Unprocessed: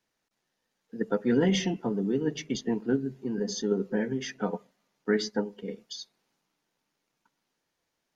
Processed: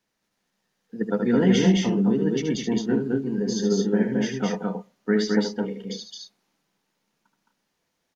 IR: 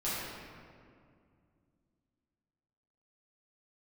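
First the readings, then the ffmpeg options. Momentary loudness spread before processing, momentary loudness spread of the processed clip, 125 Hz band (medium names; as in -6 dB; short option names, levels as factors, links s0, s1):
15 LU, 15 LU, +8.0 dB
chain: -af "equalizer=f=200:t=o:w=0.26:g=6,aecho=1:1:75.8|215.7|247.8:0.447|0.794|0.355,volume=1.19"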